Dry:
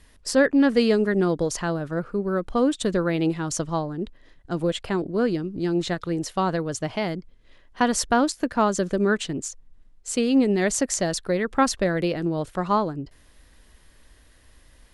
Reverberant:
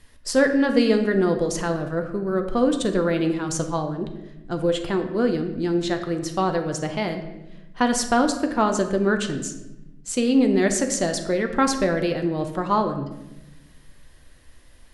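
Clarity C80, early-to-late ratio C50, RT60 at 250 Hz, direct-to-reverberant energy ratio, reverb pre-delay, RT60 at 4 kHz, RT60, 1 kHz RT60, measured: 10.5 dB, 9.0 dB, 1.6 s, 5.0 dB, 6 ms, 0.70 s, 0.95 s, 0.85 s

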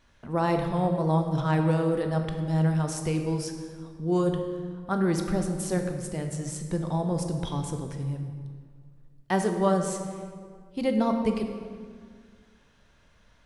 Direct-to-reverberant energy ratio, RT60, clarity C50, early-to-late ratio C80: 4.5 dB, 1.9 s, 6.0 dB, 7.5 dB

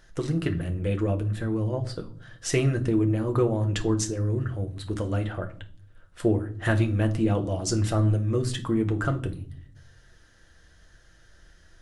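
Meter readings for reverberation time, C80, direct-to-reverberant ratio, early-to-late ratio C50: no single decay rate, 20.5 dB, 4.5 dB, 15.5 dB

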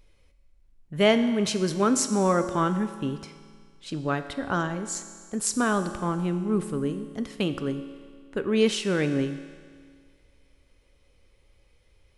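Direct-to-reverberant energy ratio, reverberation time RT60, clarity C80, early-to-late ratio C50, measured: 8.5 dB, 1.9 s, 11.5 dB, 10.5 dB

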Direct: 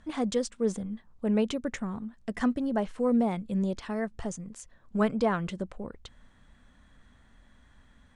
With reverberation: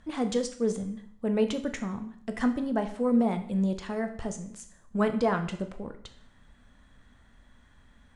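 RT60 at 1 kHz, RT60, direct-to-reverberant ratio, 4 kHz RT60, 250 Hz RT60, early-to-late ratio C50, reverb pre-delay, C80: 0.65 s, 0.65 s, 7.0 dB, 0.60 s, 0.65 s, 12.0 dB, 7 ms, 14.5 dB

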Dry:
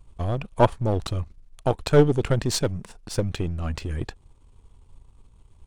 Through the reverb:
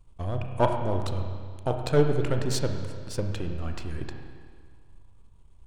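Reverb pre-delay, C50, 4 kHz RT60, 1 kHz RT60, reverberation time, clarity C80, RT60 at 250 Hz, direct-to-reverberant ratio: 31 ms, 5.0 dB, 1.7 s, 1.8 s, 1.8 s, 6.5 dB, 1.8 s, 4.0 dB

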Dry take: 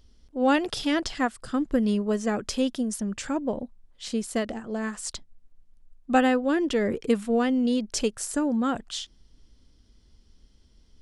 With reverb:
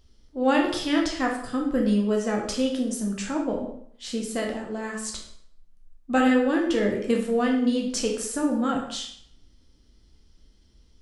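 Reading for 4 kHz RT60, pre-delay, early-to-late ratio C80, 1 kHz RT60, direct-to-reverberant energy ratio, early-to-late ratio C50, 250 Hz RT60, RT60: 0.55 s, 8 ms, 8.5 dB, 0.65 s, -0.5 dB, 5.0 dB, 0.60 s, 0.65 s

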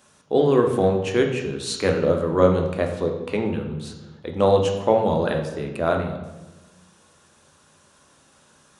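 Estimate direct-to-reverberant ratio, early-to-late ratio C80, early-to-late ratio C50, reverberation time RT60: 2.5 dB, 8.5 dB, 6.5 dB, 1.1 s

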